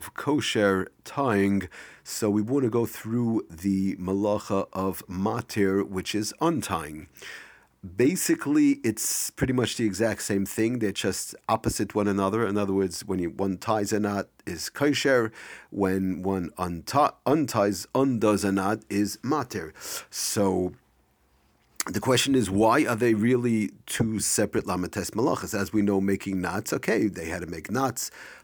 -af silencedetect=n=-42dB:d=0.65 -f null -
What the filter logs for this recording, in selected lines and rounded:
silence_start: 20.74
silence_end: 21.76 | silence_duration: 1.02